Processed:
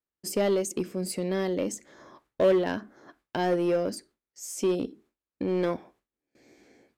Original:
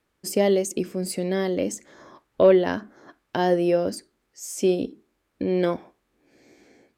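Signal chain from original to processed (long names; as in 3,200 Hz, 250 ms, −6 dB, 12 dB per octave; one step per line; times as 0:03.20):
noise gate with hold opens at −51 dBFS
in parallel at −8 dB: wave folding −19.5 dBFS
on the sum: level −6 dB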